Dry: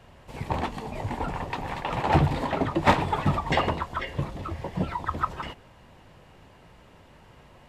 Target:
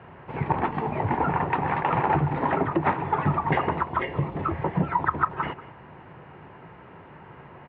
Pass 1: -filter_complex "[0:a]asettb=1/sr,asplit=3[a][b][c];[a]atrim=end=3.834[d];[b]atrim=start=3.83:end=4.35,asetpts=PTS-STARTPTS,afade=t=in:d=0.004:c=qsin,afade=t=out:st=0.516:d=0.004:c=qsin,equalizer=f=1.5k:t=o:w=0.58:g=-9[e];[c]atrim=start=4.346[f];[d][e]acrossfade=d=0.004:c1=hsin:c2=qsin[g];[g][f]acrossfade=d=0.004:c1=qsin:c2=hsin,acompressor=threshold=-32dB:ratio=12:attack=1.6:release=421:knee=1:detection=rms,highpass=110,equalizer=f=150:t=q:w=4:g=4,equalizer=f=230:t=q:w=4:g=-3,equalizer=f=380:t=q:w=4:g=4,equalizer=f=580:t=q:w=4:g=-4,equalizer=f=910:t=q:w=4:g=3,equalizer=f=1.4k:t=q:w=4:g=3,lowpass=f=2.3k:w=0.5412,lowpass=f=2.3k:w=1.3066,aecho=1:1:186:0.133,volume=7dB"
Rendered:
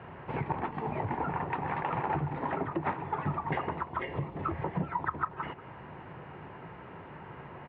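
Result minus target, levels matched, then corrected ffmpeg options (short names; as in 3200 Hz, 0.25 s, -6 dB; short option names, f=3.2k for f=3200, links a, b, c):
compressor: peak gain reduction +8.5 dB
-filter_complex "[0:a]asettb=1/sr,asplit=3[a][b][c];[a]atrim=end=3.834[d];[b]atrim=start=3.83:end=4.35,asetpts=PTS-STARTPTS,afade=t=in:d=0.004:c=qsin,afade=t=out:st=0.516:d=0.004:c=qsin,equalizer=f=1.5k:t=o:w=0.58:g=-9[e];[c]atrim=start=4.346[f];[d][e]acrossfade=d=0.004:c1=hsin:c2=qsin[g];[g][f]acrossfade=d=0.004:c1=qsin:c2=hsin,acompressor=threshold=-22.5dB:ratio=12:attack=1.6:release=421:knee=1:detection=rms,highpass=110,equalizer=f=150:t=q:w=4:g=4,equalizer=f=230:t=q:w=4:g=-3,equalizer=f=380:t=q:w=4:g=4,equalizer=f=580:t=q:w=4:g=-4,equalizer=f=910:t=q:w=4:g=3,equalizer=f=1.4k:t=q:w=4:g=3,lowpass=f=2.3k:w=0.5412,lowpass=f=2.3k:w=1.3066,aecho=1:1:186:0.133,volume=7dB"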